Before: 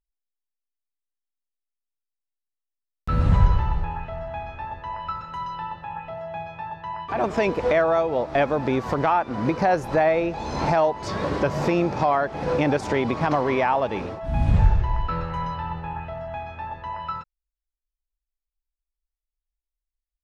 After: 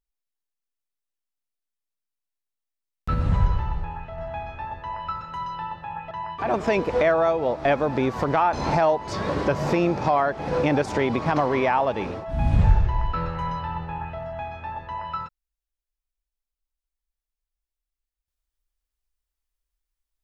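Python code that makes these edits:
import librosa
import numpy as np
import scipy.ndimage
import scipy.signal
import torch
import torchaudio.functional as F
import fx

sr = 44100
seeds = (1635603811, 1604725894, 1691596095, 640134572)

y = fx.edit(x, sr, fx.clip_gain(start_s=3.14, length_s=1.04, db=-3.5),
    fx.cut(start_s=6.11, length_s=0.7),
    fx.cut(start_s=9.23, length_s=1.25), tone=tone)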